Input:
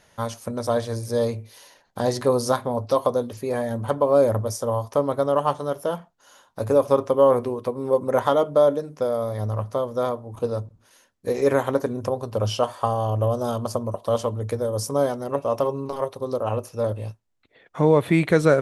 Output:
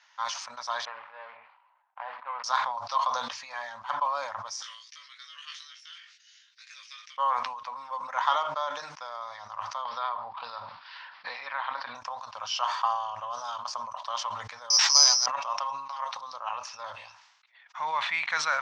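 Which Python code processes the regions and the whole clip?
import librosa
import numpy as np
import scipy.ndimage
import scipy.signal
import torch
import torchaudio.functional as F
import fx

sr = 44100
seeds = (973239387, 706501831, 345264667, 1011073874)

y = fx.chain(x, sr, fx.median_filter(points=25),
    fx.bandpass_edges(low_hz=450.0, high_hz=2200.0),
    fx.air_absorb(metres=350.0), at=(0.85, 2.44))
y = fx.chain(y, sr, fx.ellip_bandpass(low_hz=2000.0, high_hz=9800.0, order=3, stop_db=40),
    fx.doubler(ms=18.0, db=-4), at=(4.62, 7.18))
y = fx.chain(y, sr, fx.steep_lowpass(hz=4900.0, slope=72),
    fx.band_squash(depth_pct=100), at=(9.85, 11.95))
y = fx.chain(y, sr, fx.high_shelf(hz=9900.0, db=10.0),
    fx.resample_bad(factor=8, down='none', up='zero_stuff'),
    fx.band_squash(depth_pct=40), at=(14.7, 15.26))
y = scipy.signal.sosfilt(scipy.signal.ellip(3, 1.0, 40, [930.0, 5700.0], 'bandpass', fs=sr, output='sos'), y)
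y = fx.sustainer(y, sr, db_per_s=55.0)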